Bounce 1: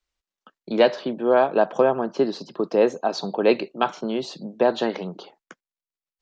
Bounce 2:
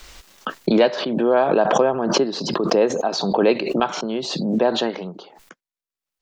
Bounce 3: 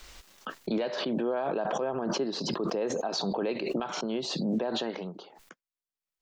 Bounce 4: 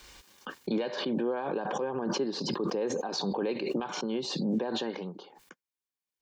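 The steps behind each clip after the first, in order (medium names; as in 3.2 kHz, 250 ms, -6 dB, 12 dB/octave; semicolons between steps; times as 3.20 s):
swell ahead of each attack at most 36 dB/s
peak limiter -15 dBFS, peak gain reduction 11 dB; trim -6.5 dB
comb of notches 660 Hz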